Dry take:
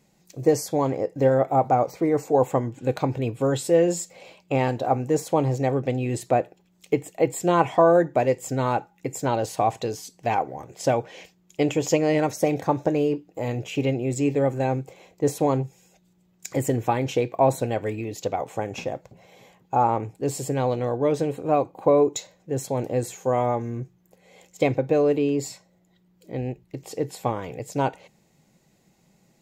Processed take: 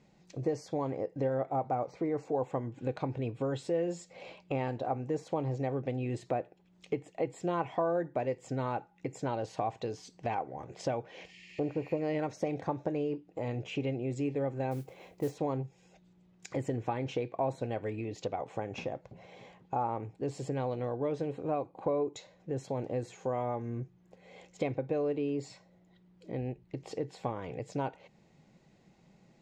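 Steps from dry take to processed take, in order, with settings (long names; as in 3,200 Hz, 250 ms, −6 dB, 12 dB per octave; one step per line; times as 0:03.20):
0:11.31–0:11.95: healed spectral selection 1,700–9,100 Hz both
downward compressor 2 to 1, threshold −38 dBFS, peak gain reduction 14 dB
high-frequency loss of the air 130 metres
0:14.71–0:15.36: noise that follows the level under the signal 24 dB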